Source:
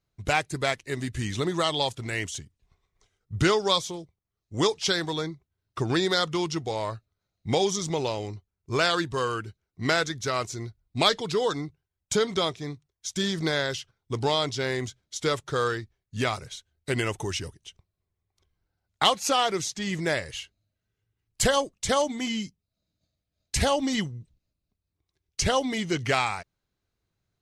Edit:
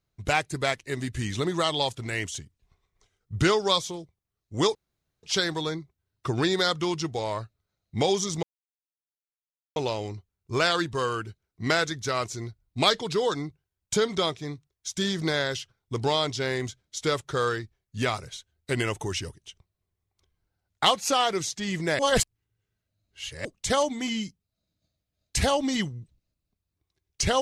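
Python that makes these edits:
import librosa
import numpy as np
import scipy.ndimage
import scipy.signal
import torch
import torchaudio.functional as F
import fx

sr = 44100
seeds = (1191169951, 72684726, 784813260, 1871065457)

y = fx.edit(x, sr, fx.insert_room_tone(at_s=4.75, length_s=0.48),
    fx.insert_silence(at_s=7.95, length_s=1.33),
    fx.reverse_span(start_s=20.18, length_s=1.46), tone=tone)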